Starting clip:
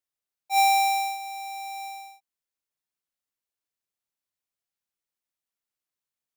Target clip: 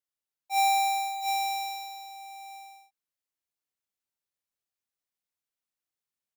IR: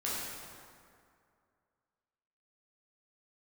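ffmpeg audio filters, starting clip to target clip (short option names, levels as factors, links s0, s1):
-af "aecho=1:1:64|599|705:0.398|0.112|0.631,volume=0.596"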